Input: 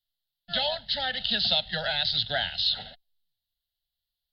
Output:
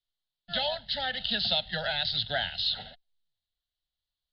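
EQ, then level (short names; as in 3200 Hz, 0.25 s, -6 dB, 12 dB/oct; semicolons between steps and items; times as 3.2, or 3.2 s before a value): air absorption 79 m; -1.0 dB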